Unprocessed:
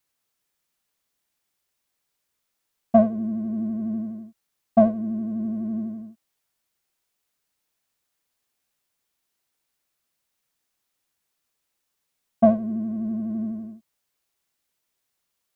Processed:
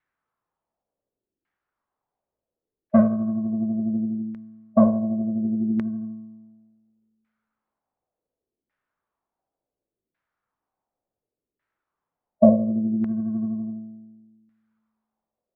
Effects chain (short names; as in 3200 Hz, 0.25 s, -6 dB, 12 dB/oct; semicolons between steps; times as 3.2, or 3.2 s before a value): resonator 55 Hz, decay 1.4 s, harmonics all, mix 70%; formant shift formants -2 st; LFO low-pass saw down 0.69 Hz 340–1800 Hz; gain +8 dB